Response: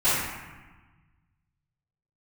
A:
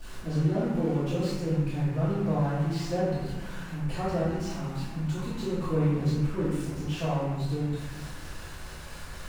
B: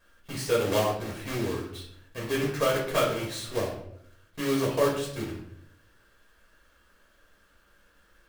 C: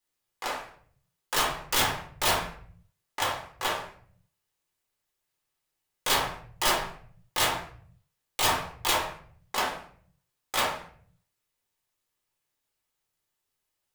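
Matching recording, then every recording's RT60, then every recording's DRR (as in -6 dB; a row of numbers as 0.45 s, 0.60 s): A; 1.3 s, 0.70 s, 0.50 s; -19.5 dB, -4.0 dB, -3.0 dB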